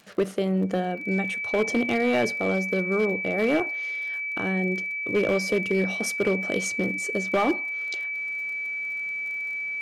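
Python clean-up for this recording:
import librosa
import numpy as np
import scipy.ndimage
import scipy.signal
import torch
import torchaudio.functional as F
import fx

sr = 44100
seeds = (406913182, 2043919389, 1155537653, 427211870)

y = fx.fix_declip(x, sr, threshold_db=-16.5)
y = fx.fix_declick_ar(y, sr, threshold=6.5)
y = fx.notch(y, sr, hz=2300.0, q=30.0)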